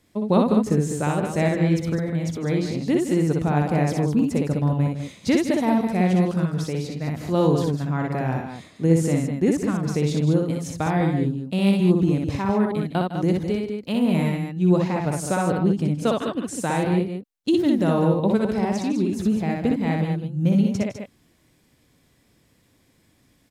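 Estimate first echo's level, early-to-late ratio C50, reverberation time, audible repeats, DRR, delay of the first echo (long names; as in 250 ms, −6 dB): −3.0 dB, no reverb audible, no reverb audible, 3, no reverb audible, 61 ms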